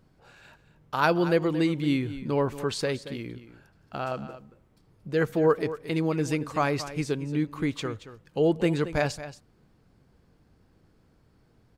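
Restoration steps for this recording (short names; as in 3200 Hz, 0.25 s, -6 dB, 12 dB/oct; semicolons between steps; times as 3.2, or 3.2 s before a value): inverse comb 0.227 s -13.5 dB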